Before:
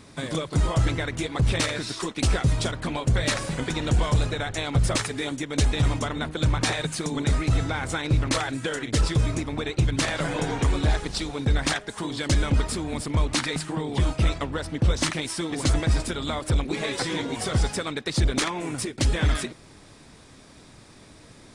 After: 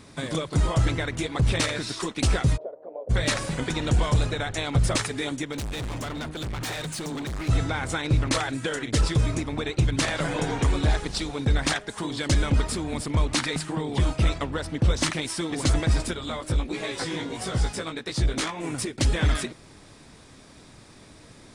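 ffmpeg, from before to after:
ffmpeg -i in.wav -filter_complex "[0:a]asplit=3[link_01][link_02][link_03];[link_01]afade=type=out:start_time=2.56:duration=0.02[link_04];[link_02]asuperpass=centerf=540:order=4:qfactor=2.4,afade=type=in:start_time=2.56:duration=0.02,afade=type=out:start_time=3.09:duration=0.02[link_05];[link_03]afade=type=in:start_time=3.09:duration=0.02[link_06];[link_04][link_05][link_06]amix=inputs=3:normalize=0,asettb=1/sr,asplit=3[link_07][link_08][link_09];[link_07]atrim=end=5.524[link_10];[link_08]atrim=start=5.52:end=7.49,asetpts=PTS-STARTPTS,afade=type=in:duration=0.004:curve=qsin,afade=type=out:start_time=1.966:duration=0.004:curve=qsin,asoftclip=type=hard:threshold=-29.5dB[link_11];[link_09]atrim=start=7.486[link_12];[link_10][link_11]acrossfade=duration=0.004:curve1=hsin:curve2=qsin[link_13];[link_13][link_12]acrossfade=duration=0.004:curve1=qsin:curve2=hsin,asettb=1/sr,asplit=3[link_14][link_15][link_16];[link_14]atrim=end=16.144[link_17];[link_15]atrim=start=16.14:end=18.64,asetpts=PTS-STARTPTS,afade=type=in:duration=0.004:curve=qsin,afade=type=out:start_time=2.496:duration=0.004:curve=qsin,flanger=delay=16:depth=2.9:speed=1.5[link_18];[link_16]atrim=start=18.636[link_19];[link_17][link_18]acrossfade=duration=0.004:curve1=hsin:curve2=qsin[link_20];[link_20][link_19]acrossfade=duration=0.004:curve1=qsin:curve2=hsin" out.wav

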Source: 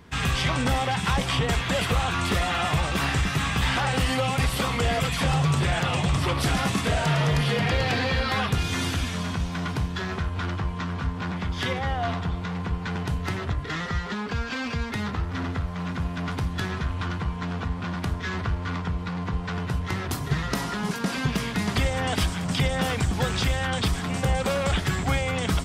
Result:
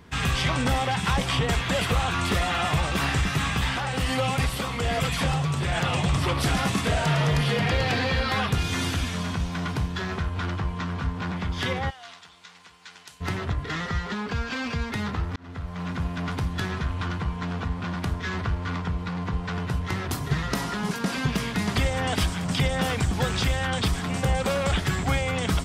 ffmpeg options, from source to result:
ffmpeg -i in.wav -filter_complex "[0:a]asettb=1/sr,asplit=3[link_01][link_02][link_03];[link_01]atrim=end=3.444[link_04];[link_02]atrim=start=3.44:end=5.75,asetpts=PTS-STARTPTS,afade=type=in:duration=0.004:curve=qsin,afade=type=out:start_time=2.306:duration=0.004:curve=qsin,tremolo=f=1.2:d=0.37[link_05];[link_03]atrim=start=5.746[link_06];[link_04][link_05]acrossfade=duration=0.004:curve1=hsin:curve2=qsin[link_07];[link_07][link_06]acrossfade=duration=0.004:curve1=qsin:curve2=hsin,asplit=3[link_08][link_09][link_10];[link_08]afade=type=out:start_time=11.89:duration=0.02[link_11];[link_09]bandpass=frequency=7700:width_type=q:width=0.75,afade=type=in:start_time=11.89:duration=0.02,afade=type=out:start_time=13.2:duration=0.02[link_12];[link_10]afade=type=in:start_time=13.2:duration=0.02[link_13];[link_11][link_12][link_13]amix=inputs=3:normalize=0,asplit=2[link_14][link_15];[link_14]atrim=end=15.36,asetpts=PTS-STARTPTS,afade=type=out:start_time=15.356:duration=0.004:curve=hsin[link_16];[link_15]atrim=start=15.36,asetpts=PTS-STARTPTS,afade=type=in:duration=0.7:curve=qsin[link_17];[link_16][link_17]concat=n=2:v=0:a=1" out.wav

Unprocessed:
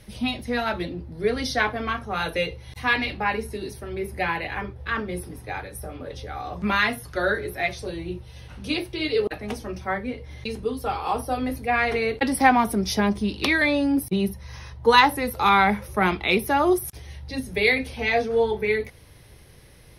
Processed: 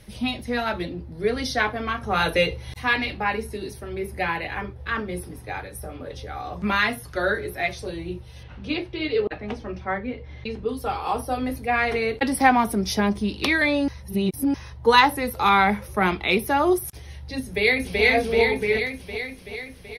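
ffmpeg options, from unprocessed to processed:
ffmpeg -i in.wav -filter_complex "[0:a]asettb=1/sr,asplit=3[link_01][link_02][link_03];[link_01]atrim=end=2.034[link_04];[link_02]atrim=start=2.03:end=2.74,asetpts=PTS-STARTPTS,afade=type=in:duration=0.004:curve=qsin,afade=type=out:start_time=0.706:duration=0.004:curve=qsin,acontrast=27[link_05];[link_03]atrim=start=2.736[link_06];[link_04][link_05]acrossfade=duration=0.004:curve1=hsin:curve2=qsin[link_07];[link_07][link_06]acrossfade=duration=0.004:curve1=qsin:curve2=hsin,asettb=1/sr,asplit=3[link_08][link_09][link_10];[link_08]atrim=end=8.434[link_11];[link_09]atrim=start=8.43:end=10.69,asetpts=PTS-STARTPTS,afade=type=in:duration=0.004:curve=qsin,afade=type=out:start_time=2.256:duration=0.004:curve=qsin,lowpass=3500[link_12];[link_10]atrim=start=10.686[link_13];[link_11][link_12]acrossfade=duration=0.004:curve1=hsin:curve2=qsin[link_14];[link_14][link_13]acrossfade=duration=0.004:curve1=qsin:curve2=hsin,asplit=2[link_15][link_16];[link_16]afade=type=in:start_time=17.41:duration=0.01,afade=type=out:start_time=18.03:duration=0.01,aecho=0:1:380|760|1140|1520|1900|2280|2660|3040|3420|3800|4180:1|0.65|0.4225|0.274625|0.178506|0.116029|0.0754189|0.0490223|0.0318645|0.0207119|0.0134627[link_17];[link_15][link_17]amix=inputs=2:normalize=0,asplit=3[link_18][link_19][link_20];[link_18]atrim=end=13.882[link_21];[link_19]atrim=start=13.878:end=14.542,asetpts=PTS-STARTPTS,areverse[link_22];[link_20]atrim=start=14.538[link_23];[link_21][link_22]acrossfade=duration=0.004:curve1=hsin:curve2=hsin[link_24];[link_24][link_23]acrossfade=duration=0.004:curve1=hsin:curve2=hsin" out.wav

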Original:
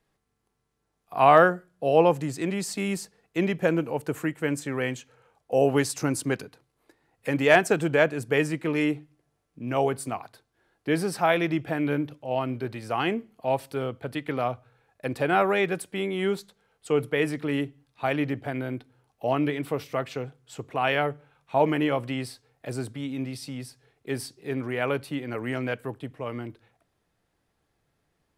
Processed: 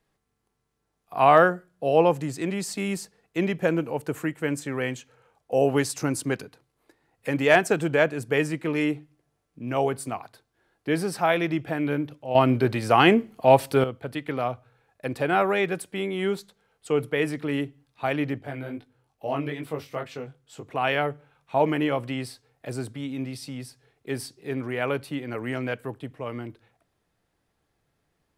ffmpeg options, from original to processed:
ffmpeg -i in.wav -filter_complex "[0:a]asettb=1/sr,asplit=3[link_01][link_02][link_03];[link_01]atrim=end=18.384[link_04];[link_02]atrim=start=18.38:end=20.67,asetpts=PTS-STARTPTS,afade=type=in:duration=0.004:curve=qsin,afade=type=out:start_time=2.286:duration=0.004:curve=qsin,flanger=delay=19:depth=3:speed=2.3[link_05];[link_03]atrim=start=20.666[link_06];[link_04][link_05]acrossfade=duration=0.004:curve1=hsin:curve2=qsin[link_07];[link_07][link_06]acrossfade=duration=0.004:curve1=qsin:curve2=hsin,asplit=3[link_08][link_09][link_10];[link_08]atrim=end=12.352[link_11];[link_09]atrim=start=12.348:end=13.842,asetpts=PTS-STARTPTS,volume=9.5dB[link_12];[link_10]atrim=start=13.838[link_13];[link_11][link_12]acrossfade=duration=0.004:curve1=hsin:curve2=hsin[link_14];[link_14][link_13]acrossfade=duration=0.004:curve1=hsin:curve2=hsin" out.wav

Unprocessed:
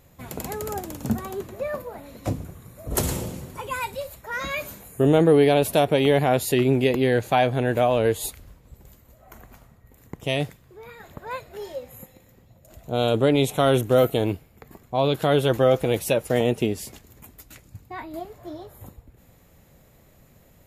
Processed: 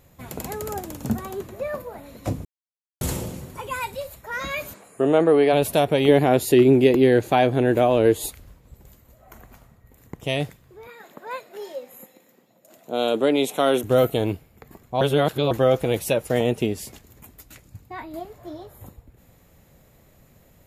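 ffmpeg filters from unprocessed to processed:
ffmpeg -i in.wav -filter_complex "[0:a]asplit=3[link_01][link_02][link_03];[link_01]afade=type=out:start_time=4.73:duration=0.02[link_04];[link_02]highpass=250,equalizer=frequency=650:width_type=q:width=4:gain=3,equalizer=frequency=1200:width_type=q:width=4:gain=5,equalizer=frequency=3500:width_type=q:width=4:gain=-5,equalizer=frequency=6100:width_type=q:width=4:gain=-7,lowpass=frequency=9100:width=0.5412,lowpass=frequency=9100:width=1.3066,afade=type=in:start_time=4.73:duration=0.02,afade=type=out:start_time=5.52:duration=0.02[link_05];[link_03]afade=type=in:start_time=5.52:duration=0.02[link_06];[link_04][link_05][link_06]amix=inputs=3:normalize=0,asettb=1/sr,asplit=3[link_07][link_08][link_09];[link_07]atrim=end=6.084[link_10];[link_08]atrim=start=6.08:end=8.26,asetpts=PTS-STARTPTS,afade=type=in:duration=0.004:curve=qsin,afade=type=out:start_time=2.176:duration=0.004:curve=qsin,equalizer=frequency=330:width_type=o:width=0.77:gain=9[link_11];[link_09]atrim=start=8.256[link_12];[link_10][link_11]acrossfade=duration=0.004:curve1=hsin:curve2=qsin[link_13];[link_13][link_12]acrossfade=duration=0.004:curve1=qsin:curve2=hsin,asettb=1/sr,asplit=3[link_14][link_15][link_16];[link_14]atrim=end=10.874[link_17];[link_15]atrim=start=10.87:end=13.84,asetpts=PTS-STARTPTS,afade=type=in:duration=0.004:curve=qsin,afade=type=out:start_time=2.966:duration=0.004:curve=qsin,highpass=frequency=210:width=0.5412,highpass=frequency=210:width=1.3066[link_18];[link_16]atrim=start=13.836[link_19];[link_17][link_18]acrossfade=duration=0.004:curve1=hsin:curve2=qsin[link_20];[link_20][link_19]acrossfade=duration=0.004:curve1=qsin:curve2=hsin,asplit=5[link_21][link_22][link_23][link_24][link_25];[link_21]atrim=end=2.45,asetpts=PTS-STARTPTS,afade=type=out:start_time=2.446:duration=0.004:curve=hsin[link_26];[link_22]atrim=start=2.45:end=3.01,asetpts=PTS-STARTPTS,volume=0[link_27];[link_23]atrim=start=3.01:end=15.012,asetpts=PTS-STARTPTS,afade=type=in:duration=0.004:curve=hsin[link_28];[link_24]atrim=start=15.008:end=15.512,asetpts=PTS-STARTPTS,areverse[link_29];[link_25]atrim=start=15.508[link_30];[link_26][link_27][link_28]concat=n=3:v=0:a=1[link_31];[link_31][link_29]acrossfade=duration=0.004:curve1=hsin:curve2=hsin[link_32];[link_32][link_30]acrossfade=duration=0.004:curve1=hsin:curve2=hsin" out.wav

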